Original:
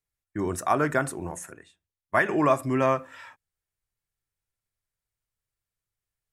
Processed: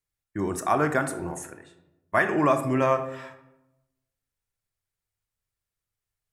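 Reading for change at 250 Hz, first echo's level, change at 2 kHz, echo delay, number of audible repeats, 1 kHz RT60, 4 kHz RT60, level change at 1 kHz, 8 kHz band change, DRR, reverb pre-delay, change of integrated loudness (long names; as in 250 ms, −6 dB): +1.0 dB, no echo audible, +0.5 dB, no echo audible, no echo audible, 0.90 s, 0.50 s, +0.5 dB, +0.5 dB, 8.5 dB, 23 ms, +0.5 dB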